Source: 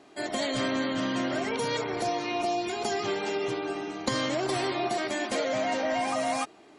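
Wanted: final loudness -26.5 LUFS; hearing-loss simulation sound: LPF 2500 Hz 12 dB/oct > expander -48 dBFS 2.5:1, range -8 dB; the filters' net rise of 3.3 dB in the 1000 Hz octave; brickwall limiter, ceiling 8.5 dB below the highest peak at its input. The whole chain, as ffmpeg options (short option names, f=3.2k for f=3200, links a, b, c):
-af "equalizer=f=1k:t=o:g=5,alimiter=limit=-22dB:level=0:latency=1,lowpass=2.5k,agate=range=-8dB:threshold=-48dB:ratio=2.5,volume=4dB"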